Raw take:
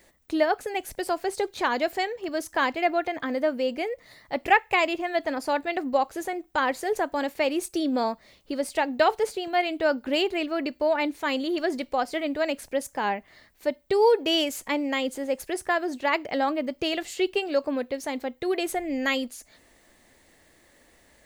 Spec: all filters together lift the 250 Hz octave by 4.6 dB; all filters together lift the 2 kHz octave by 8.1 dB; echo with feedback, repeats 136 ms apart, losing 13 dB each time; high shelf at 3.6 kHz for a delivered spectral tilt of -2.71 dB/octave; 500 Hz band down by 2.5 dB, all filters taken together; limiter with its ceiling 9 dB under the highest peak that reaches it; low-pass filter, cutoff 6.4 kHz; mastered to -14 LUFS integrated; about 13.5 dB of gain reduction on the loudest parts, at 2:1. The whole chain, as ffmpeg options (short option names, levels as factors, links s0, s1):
-af "lowpass=6400,equalizer=f=250:t=o:g=8,equalizer=f=500:t=o:g=-6.5,equalizer=f=2000:t=o:g=8.5,highshelf=f=3600:g=5.5,acompressor=threshold=0.0178:ratio=2,alimiter=limit=0.0708:level=0:latency=1,aecho=1:1:136|272|408:0.224|0.0493|0.0108,volume=9.44"